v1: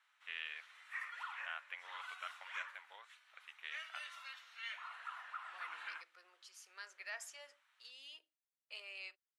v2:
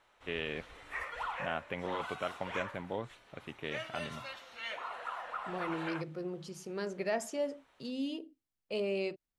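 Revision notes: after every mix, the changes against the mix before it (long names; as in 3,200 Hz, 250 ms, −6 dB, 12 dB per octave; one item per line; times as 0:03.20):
master: remove four-pole ladder high-pass 1,100 Hz, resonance 25%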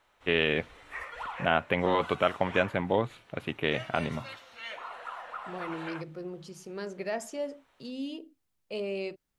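first voice +11.5 dB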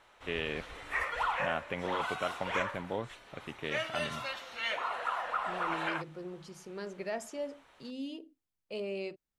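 first voice −9.5 dB
second voice −3.5 dB
background +6.5 dB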